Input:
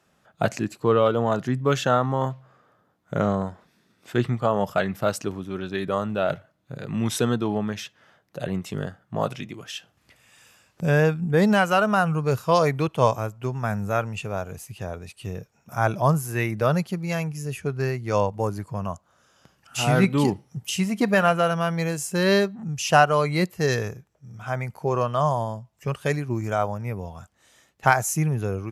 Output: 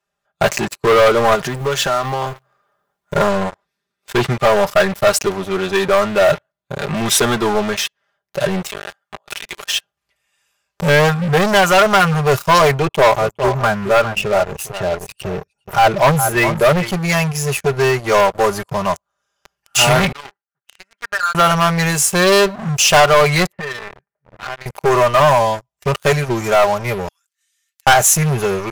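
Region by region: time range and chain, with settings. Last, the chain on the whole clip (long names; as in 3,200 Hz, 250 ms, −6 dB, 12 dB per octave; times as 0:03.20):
0:01.35–0:03.16: mu-law and A-law mismatch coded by mu + parametric band 87 Hz −4.5 dB 0.41 octaves + downward compressor 4 to 1, threshold −29 dBFS
0:08.67–0:09.65: high-pass filter 1,200 Hz 6 dB per octave + compressor whose output falls as the input rises −45 dBFS
0:12.74–0:16.92: spectral envelope exaggerated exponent 1.5 + single-tap delay 409 ms −12.5 dB
0:20.12–0:21.35: mu-law and A-law mismatch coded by A + resonant band-pass 1,500 Hz, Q 5.2 + downward compressor 4 to 1, threshold −34 dBFS
0:23.52–0:24.66: downward compressor 12 to 1, threshold −35 dBFS + loudspeaker in its box 130–2,200 Hz, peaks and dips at 210 Hz +4 dB, 310 Hz −7 dB, 1,800 Hz +6 dB
0:27.08–0:27.87: inverse Chebyshev high-pass filter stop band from 340 Hz, stop band 70 dB + high-shelf EQ 3,800 Hz +10.5 dB + downward compressor 8 to 1, threshold −52 dBFS
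whole clip: comb filter 5 ms, depth 78%; leveller curve on the samples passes 5; parametric band 220 Hz −13 dB 1.1 octaves; level −3.5 dB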